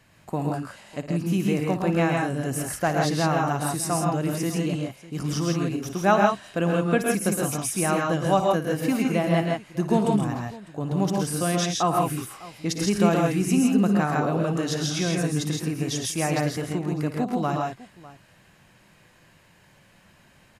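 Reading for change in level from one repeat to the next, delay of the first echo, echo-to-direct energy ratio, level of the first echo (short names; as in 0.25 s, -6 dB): no steady repeat, 58 ms, 0.0 dB, -12.5 dB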